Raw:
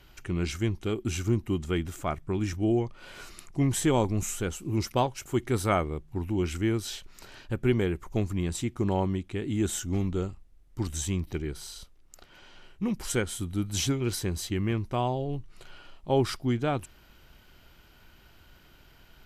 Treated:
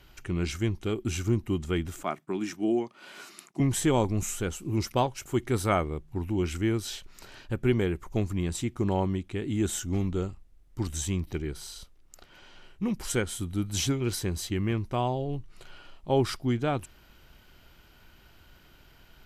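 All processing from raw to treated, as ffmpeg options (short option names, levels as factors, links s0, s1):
-filter_complex "[0:a]asettb=1/sr,asplit=3[s0][s1][s2];[s0]atrim=end=2.034[s3];[s1]atrim=start=2.03:end=3.6,asetpts=PTS-STARTPTS,afade=t=in:d=0.004:c=qsin,afade=t=out:st=1.566:d=0.004:c=qsin,highpass=f=190:w=0.5412,highpass=f=190:w=1.3066,agate=range=0.0224:threshold=0.00112:ratio=3:release=100:detection=peak,bandreject=f=500:w=5.4[s4];[s2]atrim=start=3.596[s5];[s3][s4]acrossfade=d=0.004:c1=hsin:c2=qsin[s6];[s6][s5]acrossfade=d=0.004:c1=qsin:c2=hsin"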